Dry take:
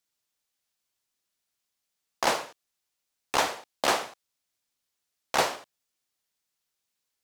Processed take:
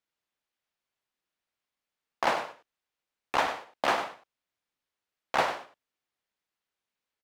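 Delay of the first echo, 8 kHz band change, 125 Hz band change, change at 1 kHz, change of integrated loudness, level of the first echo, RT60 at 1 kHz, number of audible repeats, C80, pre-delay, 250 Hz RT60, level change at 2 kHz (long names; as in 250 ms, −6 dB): 99 ms, −12.0 dB, −2.5 dB, 0.0 dB, −2.0 dB, −10.5 dB, no reverb audible, 1, no reverb audible, no reverb audible, no reverb audible, −0.5 dB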